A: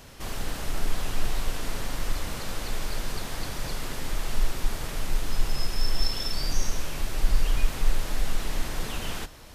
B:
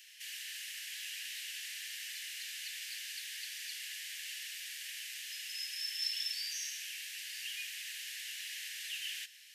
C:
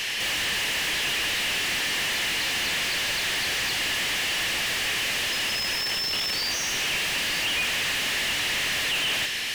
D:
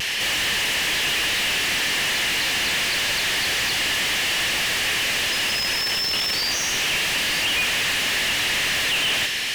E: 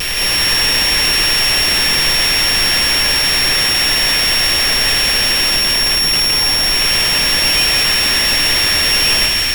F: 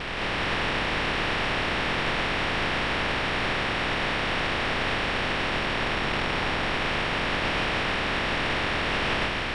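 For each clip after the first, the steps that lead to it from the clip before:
Chebyshev high-pass filter 1,700 Hz, order 6; parametric band 2,900 Hz +6.5 dB 0.27 octaves; level −4 dB
mid-hump overdrive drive 36 dB, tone 2,100 Hz, clips at −23 dBFS; level +8.5 dB
pitch vibrato 0.33 Hz 10 cents; level +4 dB
samples sorted by size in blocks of 8 samples; background noise brown −34 dBFS; echo with a time of its own for lows and highs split 1,800 Hz, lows 107 ms, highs 166 ms, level −4.5 dB; level +6 dB
compressing power law on the bin magnitudes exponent 0.39; high-frequency loss of the air 390 metres; downsampling to 22,050 Hz; level −5.5 dB

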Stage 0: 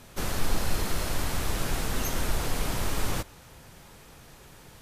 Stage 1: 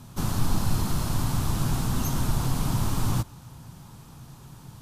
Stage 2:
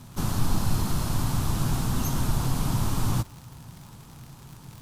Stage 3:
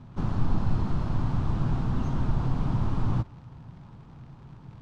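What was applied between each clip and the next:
graphic EQ with 10 bands 125 Hz +12 dB, 250 Hz +5 dB, 500 Hz −8 dB, 1,000 Hz +6 dB, 2,000 Hz −9 dB
surface crackle 120 per second −37 dBFS
head-to-tape spacing loss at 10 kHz 35 dB

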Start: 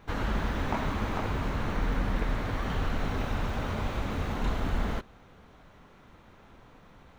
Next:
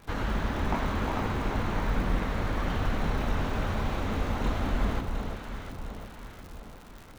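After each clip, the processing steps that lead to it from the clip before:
surface crackle 130 per second −39 dBFS
on a send: delay that swaps between a low-pass and a high-pass 354 ms, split 1,100 Hz, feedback 69%, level −3.5 dB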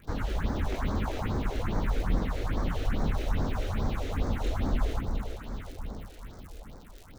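all-pass phaser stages 4, 2.4 Hz, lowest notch 160–2,800 Hz

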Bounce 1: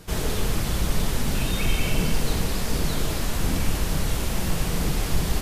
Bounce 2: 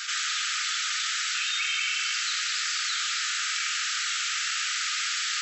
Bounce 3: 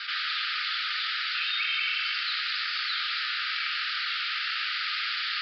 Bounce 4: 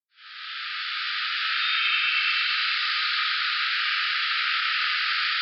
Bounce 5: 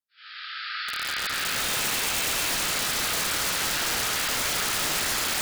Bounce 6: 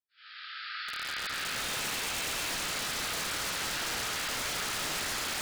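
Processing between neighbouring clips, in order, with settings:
brick-wall band-pass 1,200–7,900 Hz; envelope flattener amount 70%; level +3 dB
Butterworth low-pass 4,900 Hz 96 dB per octave
fade in at the beginning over 1.52 s; downward compressor 1.5 to 1, threshold −41 dBFS, peak gain reduction 6 dB; convolution reverb RT60 4.1 s, pre-delay 77 ms; level +3.5 dB
dynamic equaliser 2,800 Hz, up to −4 dB, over −39 dBFS, Q 1.4; delay that swaps between a low-pass and a high-pass 144 ms, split 2,000 Hz, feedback 75%, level −2.5 dB; wrap-around overflow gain 21 dB
high-shelf EQ 11,000 Hz −7.5 dB; level −6 dB

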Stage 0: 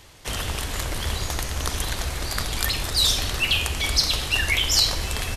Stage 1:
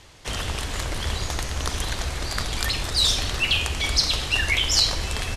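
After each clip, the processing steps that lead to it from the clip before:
low-pass filter 8,800 Hz 12 dB per octave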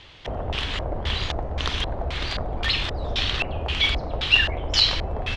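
auto-filter low-pass square 1.9 Hz 680–3,300 Hz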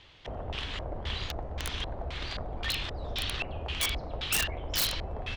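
wrap-around overflow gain 12.5 dB
level −8.5 dB

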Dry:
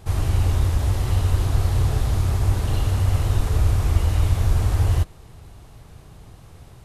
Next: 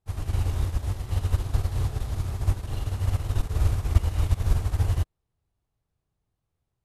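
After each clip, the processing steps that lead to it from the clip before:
expander for the loud parts 2.5 to 1, over −37 dBFS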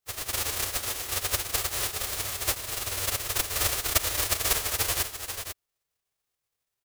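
spectral envelope flattened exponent 0.1
multi-tap delay 397/491 ms −14/−8 dB
level −6 dB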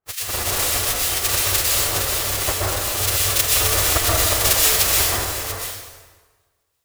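two-band tremolo in antiphase 2.8 Hz, depth 100%, crossover 1,700 Hz
dense smooth reverb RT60 1.4 s, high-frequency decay 0.75×, pre-delay 110 ms, DRR −4.5 dB
level +9 dB

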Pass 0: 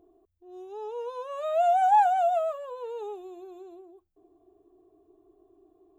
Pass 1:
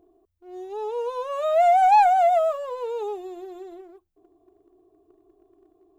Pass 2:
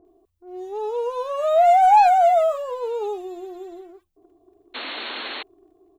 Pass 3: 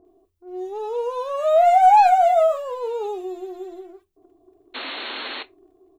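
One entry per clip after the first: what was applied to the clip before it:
leveller curve on the samples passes 1; level +3 dB
multiband delay without the direct sound lows, highs 50 ms, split 1,600 Hz; sound drawn into the spectrogram noise, 0:04.74–0:05.43, 220–4,400 Hz −35 dBFS; level +3 dB
convolution reverb, pre-delay 8 ms, DRR 11 dB

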